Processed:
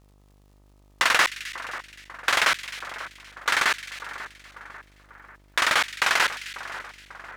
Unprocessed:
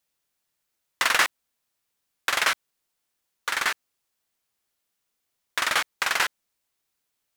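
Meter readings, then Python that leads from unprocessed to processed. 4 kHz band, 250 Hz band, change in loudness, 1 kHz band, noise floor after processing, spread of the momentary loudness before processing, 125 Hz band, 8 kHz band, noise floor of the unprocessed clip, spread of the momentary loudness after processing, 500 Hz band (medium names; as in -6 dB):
+2.5 dB, +3.0 dB, +1.0 dB, +3.0 dB, -57 dBFS, 11 LU, no reading, +0.5 dB, -79 dBFS, 20 LU, +3.0 dB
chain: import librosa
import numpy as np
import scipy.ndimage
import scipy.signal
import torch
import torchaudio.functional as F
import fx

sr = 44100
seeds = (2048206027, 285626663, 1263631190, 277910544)

p1 = fx.high_shelf(x, sr, hz=11000.0, db=-10.5)
p2 = fx.over_compress(p1, sr, threshold_db=-29.0, ratio=-1.0)
p3 = p1 + F.gain(torch.from_numpy(p2), -2.5).numpy()
p4 = fx.dmg_crackle(p3, sr, seeds[0], per_s=110.0, level_db=-51.0)
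p5 = fx.dmg_buzz(p4, sr, base_hz=50.0, harmonics=26, level_db=-57.0, tilt_db=-6, odd_only=False)
y = fx.echo_split(p5, sr, split_hz=1900.0, low_ms=543, high_ms=261, feedback_pct=52, wet_db=-13.0)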